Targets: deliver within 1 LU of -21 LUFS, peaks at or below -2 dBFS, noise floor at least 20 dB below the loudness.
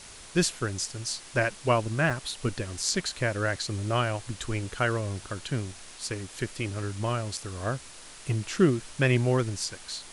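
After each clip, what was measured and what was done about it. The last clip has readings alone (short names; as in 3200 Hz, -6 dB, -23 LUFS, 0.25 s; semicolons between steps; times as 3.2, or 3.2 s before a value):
dropouts 1; longest dropout 5.2 ms; noise floor -47 dBFS; noise floor target -49 dBFS; loudness -29.0 LUFS; peak -8.5 dBFS; loudness target -21.0 LUFS
-> interpolate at 2.1, 5.2 ms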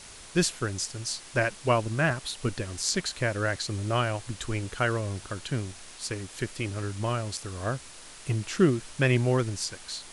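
dropouts 0; noise floor -47 dBFS; noise floor target -49 dBFS
-> denoiser 6 dB, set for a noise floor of -47 dBFS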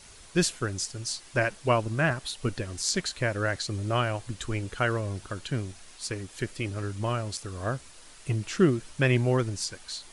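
noise floor -50 dBFS; loudness -29.5 LUFS; peak -8.5 dBFS; loudness target -21.0 LUFS
-> gain +8.5 dB; limiter -2 dBFS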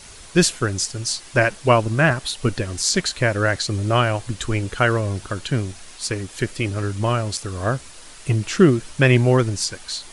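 loudness -21.0 LUFS; peak -2.0 dBFS; noise floor -42 dBFS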